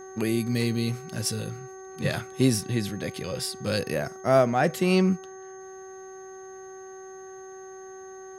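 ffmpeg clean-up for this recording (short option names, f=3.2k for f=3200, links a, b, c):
-af "bandreject=f=380:t=h:w=4,bandreject=f=760:t=h:w=4,bandreject=f=1.14k:t=h:w=4,bandreject=f=1.52k:t=h:w=4,bandreject=f=1.9k:t=h:w=4,bandreject=f=6.4k:w=30"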